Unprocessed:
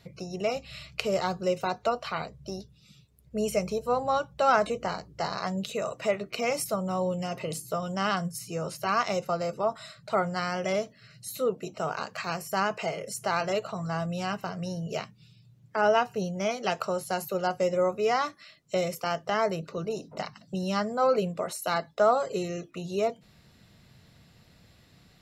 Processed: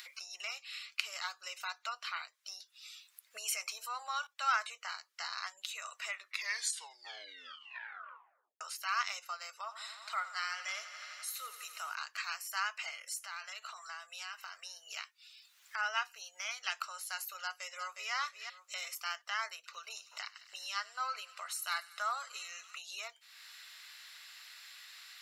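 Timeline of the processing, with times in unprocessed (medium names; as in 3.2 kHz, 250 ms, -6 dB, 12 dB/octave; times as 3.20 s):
3.45–4.27 s: level flattener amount 50%
6.13 s: tape stop 2.48 s
9.56–11.95 s: thinning echo 85 ms, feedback 84%, high-pass 220 Hz, level -14 dB
12.96–14.97 s: compression 4:1, threshold -32 dBFS
17.42–18.13 s: echo throw 360 ms, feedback 25%, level -7.5 dB
19.54–22.79 s: feedback echo behind a high-pass 97 ms, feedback 76%, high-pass 1.6 kHz, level -19 dB
whole clip: high-pass 1.3 kHz 24 dB/octave; upward compressor, threshold -37 dBFS; trim -2.5 dB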